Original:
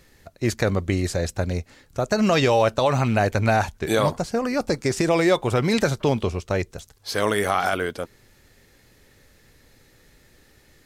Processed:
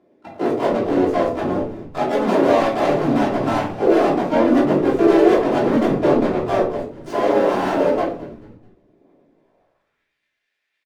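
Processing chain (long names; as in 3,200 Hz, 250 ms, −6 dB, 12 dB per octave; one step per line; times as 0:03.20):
running median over 41 samples
noise gate −50 dBFS, range −15 dB
dynamic equaliser 500 Hz, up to +3 dB, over −33 dBFS, Q 1.4
in parallel at +2 dB: downward compressor 12 to 1, threshold −30 dBFS, peak gain reduction 16 dB
on the sum: soft clipping −25 dBFS, distortion −7 dB
high-pass filter sweep 290 Hz → 2,100 Hz, 0:09.32–0:10.11
phase shifter 0.33 Hz, delay 4.9 ms, feedback 22%
high-shelf EQ 4,700 Hz −10.5 dB
pitch-shifted copies added +3 semitones −2 dB, +5 semitones −1 dB, +12 semitones −7 dB
on a send: echo with shifted repeats 217 ms, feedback 39%, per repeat −110 Hz, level −16.5 dB
on the sum: rectangular room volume 340 cubic metres, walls furnished, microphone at 3.1 metres
level −2 dB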